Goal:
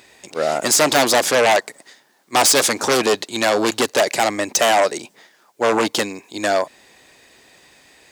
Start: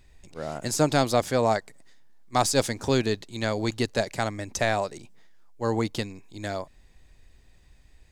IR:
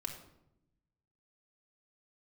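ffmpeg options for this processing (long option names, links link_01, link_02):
-filter_complex "[0:a]asplit=2[link_01][link_02];[link_02]aeval=exprs='0.473*sin(PI/2*7.08*val(0)/0.473)':channel_layout=same,volume=-7dB[link_03];[link_01][link_03]amix=inputs=2:normalize=0,highpass=350,volume=1.5dB"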